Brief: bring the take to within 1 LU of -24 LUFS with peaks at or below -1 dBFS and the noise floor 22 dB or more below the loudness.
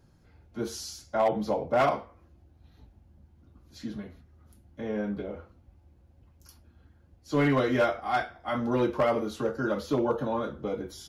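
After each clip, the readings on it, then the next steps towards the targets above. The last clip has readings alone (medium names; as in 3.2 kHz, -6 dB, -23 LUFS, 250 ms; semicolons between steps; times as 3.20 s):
clipped samples 0.4%; clipping level -17.5 dBFS; loudness -29.0 LUFS; peak level -17.5 dBFS; loudness target -24.0 LUFS
-> clip repair -17.5 dBFS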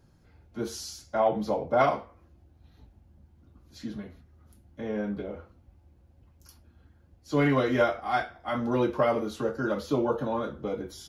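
clipped samples 0.0%; loudness -28.5 LUFS; peak level -10.0 dBFS; loudness target -24.0 LUFS
-> trim +4.5 dB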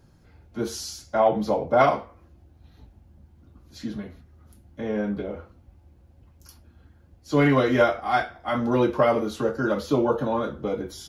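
loudness -24.0 LUFS; peak level -5.5 dBFS; noise floor -56 dBFS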